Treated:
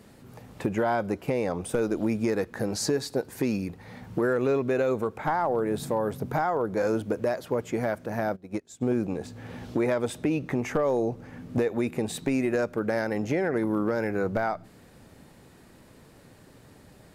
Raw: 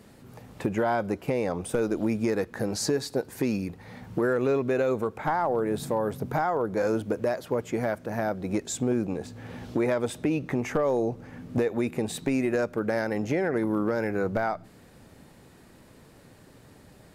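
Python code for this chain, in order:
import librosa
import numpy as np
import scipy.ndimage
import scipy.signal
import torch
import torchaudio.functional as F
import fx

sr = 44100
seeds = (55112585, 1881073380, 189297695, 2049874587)

y = fx.upward_expand(x, sr, threshold_db=-36.0, expansion=2.5, at=(8.35, 8.81), fade=0.02)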